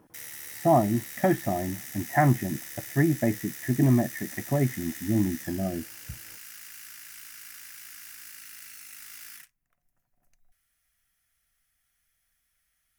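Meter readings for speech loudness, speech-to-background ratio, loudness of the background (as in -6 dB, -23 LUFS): -26.5 LUFS, 13.5 dB, -40.0 LUFS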